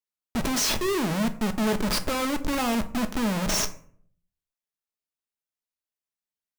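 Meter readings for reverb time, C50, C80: 0.55 s, 15.5 dB, 19.0 dB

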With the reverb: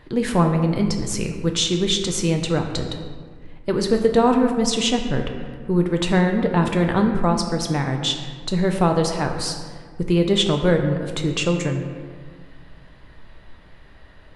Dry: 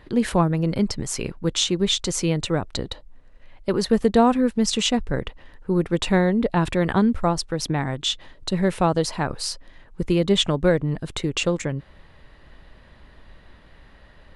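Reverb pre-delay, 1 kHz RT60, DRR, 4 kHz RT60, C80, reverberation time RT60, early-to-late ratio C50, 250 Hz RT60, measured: 6 ms, 1.7 s, 3.5 dB, 1.0 s, 7.5 dB, 1.7 s, 6.0 dB, 2.2 s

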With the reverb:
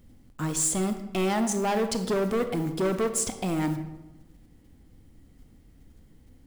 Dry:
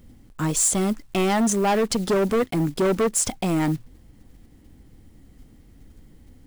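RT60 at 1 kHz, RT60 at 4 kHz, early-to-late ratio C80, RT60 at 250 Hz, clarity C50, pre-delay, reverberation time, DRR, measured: 0.95 s, 0.60 s, 11.5 dB, 1.3 s, 9.5 dB, 26 ms, 1.0 s, 8.0 dB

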